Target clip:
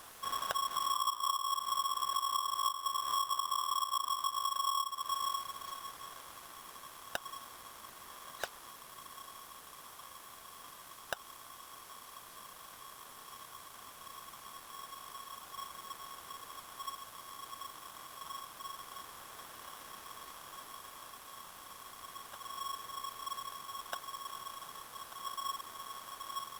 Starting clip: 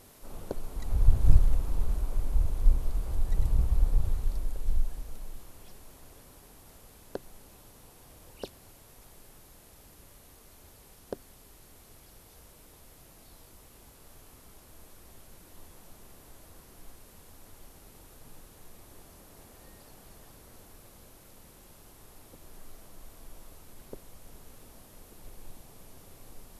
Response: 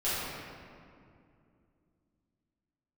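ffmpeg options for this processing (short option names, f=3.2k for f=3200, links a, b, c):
-af "acompressor=threshold=-34dB:ratio=12,aeval=exprs='val(0)*sgn(sin(2*PI*1100*n/s))':c=same,volume=2dB"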